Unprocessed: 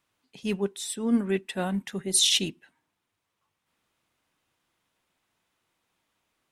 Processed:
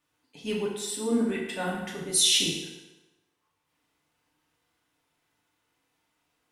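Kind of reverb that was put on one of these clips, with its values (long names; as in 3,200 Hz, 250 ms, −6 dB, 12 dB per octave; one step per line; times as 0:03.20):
feedback delay network reverb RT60 1.1 s, low-frequency decay 0.8×, high-frequency decay 0.8×, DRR −4.5 dB
level −4.5 dB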